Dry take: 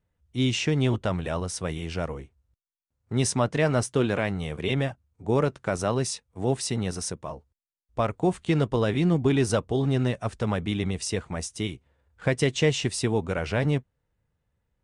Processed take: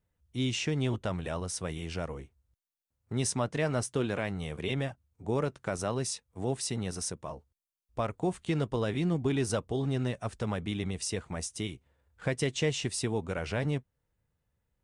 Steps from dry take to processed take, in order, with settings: treble shelf 7.5 kHz +5.5 dB; in parallel at -2 dB: compression, threshold -31 dBFS, peak gain reduction 13.5 dB; on the sum: trim -8.5 dB

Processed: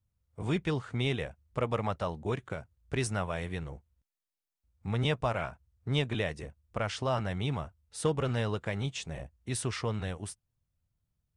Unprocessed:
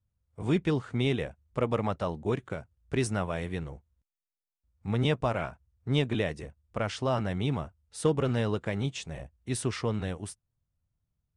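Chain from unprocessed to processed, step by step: dynamic bell 280 Hz, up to -6 dB, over -39 dBFS, Q 0.83

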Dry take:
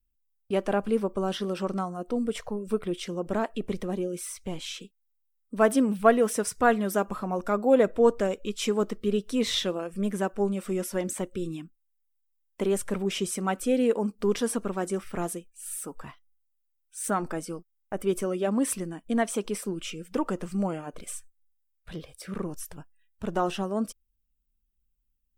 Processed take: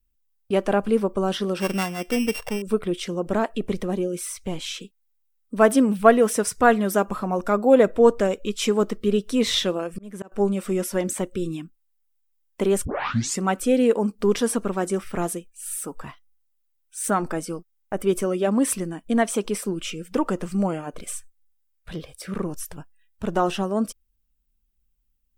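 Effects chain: 1.60–2.62 s: sorted samples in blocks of 16 samples; 9.78–10.32 s: slow attack 507 ms; 12.85 s: tape start 0.56 s; trim +5 dB

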